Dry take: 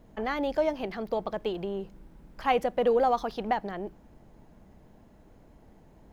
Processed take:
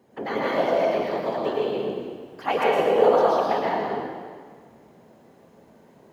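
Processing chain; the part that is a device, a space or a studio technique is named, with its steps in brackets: whispering ghost (whisperiser; HPF 220 Hz 12 dB/oct; reverb RT60 1.7 s, pre-delay 0.104 s, DRR -5.5 dB)

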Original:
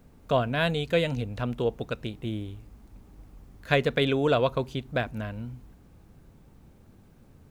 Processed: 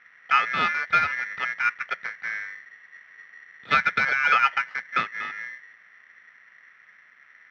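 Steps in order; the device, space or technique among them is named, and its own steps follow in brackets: ring modulator pedal into a guitar cabinet (polarity switched at an audio rate 1900 Hz; speaker cabinet 94–3500 Hz, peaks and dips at 170 Hz +4 dB, 320 Hz -10 dB, 1300 Hz +9 dB)

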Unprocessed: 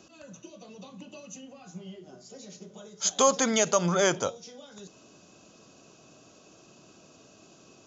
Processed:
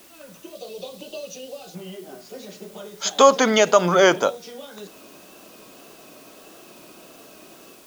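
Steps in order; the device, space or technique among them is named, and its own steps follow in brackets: dictaphone (BPF 250–3800 Hz; AGC gain up to 6 dB; wow and flutter; white noise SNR 27 dB); 0.55–1.75 graphic EQ 250/500/1000/2000/4000 Hz -9/+10/-8/-7/+9 dB; gain +4 dB

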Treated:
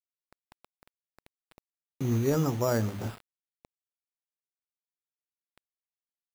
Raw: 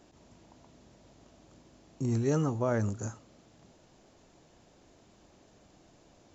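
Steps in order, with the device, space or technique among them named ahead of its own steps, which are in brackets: 2.02–3.04 notches 50/100/150/200/250/300 Hz; early 8-bit sampler (sample-rate reducer 6300 Hz, jitter 0%; bit-crush 8-bit); gain +2.5 dB

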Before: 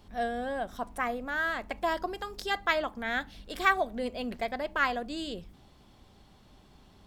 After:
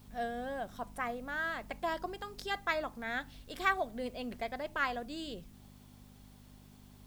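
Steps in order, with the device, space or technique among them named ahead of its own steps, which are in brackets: 2.67–3.17 notch 3100 Hz, Q 5.8; video cassette with head-switching buzz (buzz 50 Hz, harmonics 5, -52 dBFS -1 dB/oct; white noise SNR 29 dB); gain -5.5 dB

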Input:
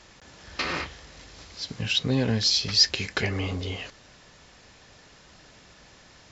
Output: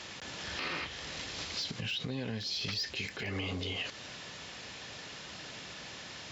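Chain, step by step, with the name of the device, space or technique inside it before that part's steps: broadcast voice chain (HPF 95 Hz 12 dB/oct; de-esser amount 90%; compressor 4:1, threshold -40 dBFS, peak gain reduction 17 dB; bell 3100 Hz +6 dB 1.2 oct; limiter -31.5 dBFS, peak gain reduction 10 dB); gain +5 dB

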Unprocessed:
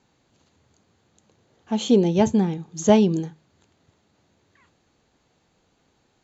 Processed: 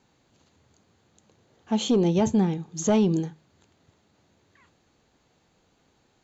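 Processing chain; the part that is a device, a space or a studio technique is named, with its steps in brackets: soft clipper into limiter (soft clip -9 dBFS, distortion -18 dB; limiter -14.5 dBFS, peak gain reduction 5 dB)

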